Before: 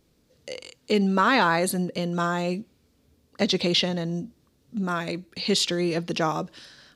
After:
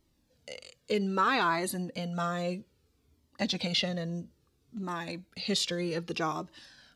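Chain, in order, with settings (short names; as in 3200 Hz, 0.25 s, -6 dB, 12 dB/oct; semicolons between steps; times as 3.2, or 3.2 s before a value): cascading flanger falling 0.62 Hz; gain -2 dB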